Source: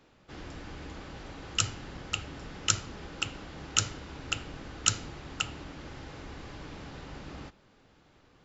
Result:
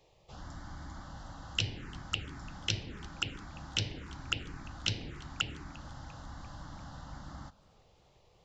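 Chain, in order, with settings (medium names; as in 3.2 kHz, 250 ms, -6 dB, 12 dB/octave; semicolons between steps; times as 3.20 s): touch-sensitive phaser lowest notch 240 Hz, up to 1.3 kHz, full sweep at -30 dBFS; modulated delay 344 ms, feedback 56%, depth 106 cents, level -23 dB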